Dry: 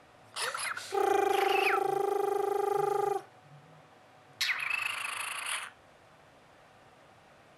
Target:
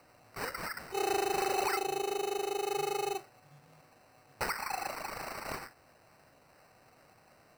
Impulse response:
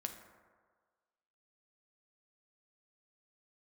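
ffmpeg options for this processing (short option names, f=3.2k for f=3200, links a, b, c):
-af "acrusher=samples=13:mix=1:aa=0.000001,volume=-4dB"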